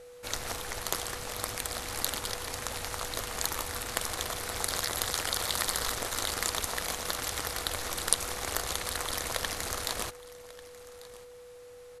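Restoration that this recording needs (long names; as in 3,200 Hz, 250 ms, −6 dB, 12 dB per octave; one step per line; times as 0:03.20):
notch filter 490 Hz, Q 30
echo removal 1,143 ms −19.5 dB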